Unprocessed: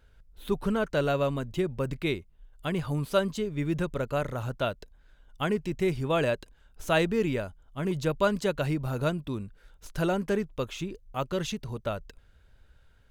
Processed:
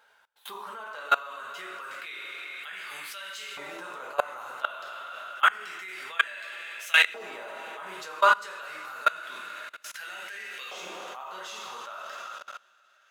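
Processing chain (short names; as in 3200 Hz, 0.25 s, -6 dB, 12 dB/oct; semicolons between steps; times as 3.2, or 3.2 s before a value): two-slope reverb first 0.54 s, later 4.2 s, from -15 dB, DRR -3.5 dB; LFO high-pass saw up 0.28 Hz 820–2200 Hz; level quantiser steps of 23 dB; gain +6 dB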